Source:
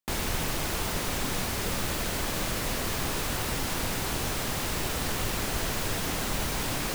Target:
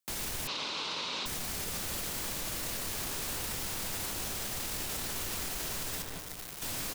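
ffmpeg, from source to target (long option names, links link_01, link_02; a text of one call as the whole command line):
ffmpeg -i in.wav -filter_complex "[0:a]highshelf=frequency=3300:gain=10,asettb=1/sr,asplit=3[link_01][link_02][link_03];[link_01]atrim=end=6.024[link_04];[link_02]atrim=start=6.02:end=6.62,asetpts=PTS-STARTPTS,afade=type=in:duration=0.004:curve=qsin,afade=type=out:start_time=0.596:duration=0.004:curve=qsin,acrusher=bits=2:mix=0:aa=0.5[link_05];[link_03]atrim=start=6.616[link_06];[link_04][link_05]acrossfade=duration=0.004:curve1=hsin:curve2=qsin[link_07];[link_07][link_06]acrossfade=duration=0.004:curve1=qsin:curve2=hsin,asplit=2[link_08][link_09];[link_09]adelay=176,lowpass=frequency=2200:poles=1,volume=-7dB,asplit=2[link_10][link_11];[link_11]adelay=176,lowpass=frequency=2200:poles=1,volume=0.55,asplit=2[link_12][link_13];[link_13]adelay=176,lowpass=frequency=2200:poles=1,volume=0.55,asplit=2[link_14][link_15];[link_15]adelay=176,lowpass=frequency=2200:poles=1,volume=0.55,asplit=2[link_16][link_17];[link_17]adelay=176,lowpass=frequency=2200:poles=1,volume=0.55,asplit=2[link_18][link_19];[link_19]adelay=176,lowpass=frequency=2200:poles=1,volume=0.55,asplit=2[link_20][link_21];[link_21]adelay=176,lowpass=frequency=2200:poles=1,volume=0.55[link_22];[link_10][link_12][link_14][link_16][link_18][link_20][link_22]amix=inputs=7:normalize=0[link_23];[link_08][link_23]amix=inputs=2:normalize=0,afreqshift=-13,asettb=1/sr,asplit=3[link_24][link_25][link_26];[link_24]atrim=end=0.474[link_27];[link_25]atrim=start=0.47:end=1.26,asetpts=PTS-STARTPTS,afade=type=in:duration=0.004:curve=qsin,afade=type=out:start_time=0.786:duration=0.004:curve=qsin,highpass=290,equalizer=frequency=350:width_type=q:width=4:gain=-5,equalizer=frequency=700:width_type=q:width=4:gain=-8,equalizer=frequency=1000:width_type=q:width=4:gain=5,equalizer=frequency=1800:width_type=q:width=4:gain=-8,equalizer=frequency=2700:width_type=q:width=4:gain=3,equalizer=frequency=3900:width_type=q:width=4:gain=7,lowpass=frequency=4900:width=0.5412,lowpass=frequency=4900:width=1.3066[link_28];[link_26]atrim=start=1.256[link_29];[link_27][link_28]acrossfade=duration=0.004:curve1=hsin:curve2=qsin[link_30];[link_30][link_29]acrossfade=duration=0.004:curve1=qsin:curve2=hsin,alimiter=limit=-22.5dB:level=0:latency=1:release=29,volume=-4.5dB" out.wav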